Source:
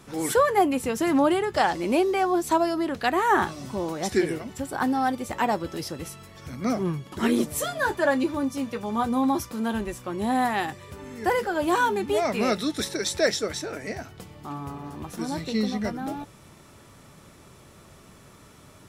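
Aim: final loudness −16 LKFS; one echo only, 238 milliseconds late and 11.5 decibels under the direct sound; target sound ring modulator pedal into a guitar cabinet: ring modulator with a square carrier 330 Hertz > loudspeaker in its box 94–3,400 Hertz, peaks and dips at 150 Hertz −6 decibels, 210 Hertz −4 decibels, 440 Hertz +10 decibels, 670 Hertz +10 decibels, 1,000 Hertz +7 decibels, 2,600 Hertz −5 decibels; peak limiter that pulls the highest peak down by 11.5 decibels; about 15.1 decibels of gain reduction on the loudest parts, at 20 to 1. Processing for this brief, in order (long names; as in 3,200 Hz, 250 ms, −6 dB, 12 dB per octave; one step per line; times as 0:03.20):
downward compressor 20 to 1, threshold −31 dBFS
brickwall limiter −32 dBFS
single-tap delay 238 ms −11.5 dB
ring modulator with a square carrier 330 Hz
loudspeaker in its box 94–3,400 Hz, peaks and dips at 150 Hz −6 dB, 210 Hz −4 dB, 440 Hz +10 dB, 670 Hz +10 dB, 1,000 Hz +7 dB, 2,600 Hz −5 dB
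level +19.5 dB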